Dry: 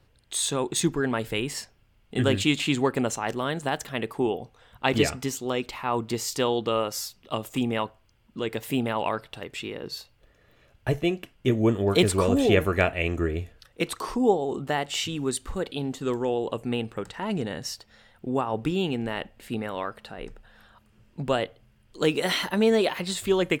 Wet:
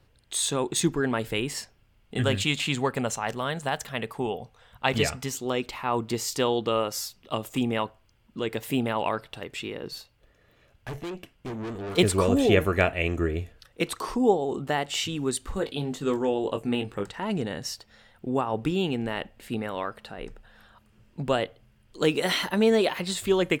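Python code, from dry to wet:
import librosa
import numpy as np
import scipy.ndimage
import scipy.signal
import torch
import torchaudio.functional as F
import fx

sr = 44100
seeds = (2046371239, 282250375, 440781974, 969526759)

y = fx.peak_eq(x, sr, hz=320.0, db=-9.5, octaves=0.56, at=(2.17, 5.35))
y = fx.tube_stage(y, sr, drive_db=32.0, bias=0.4, at=(9.9, 11.97), fade=0.02)
y = fx.doubler(y, sr, ms=20.0, db=-6.0, at=(15.53, 17.06))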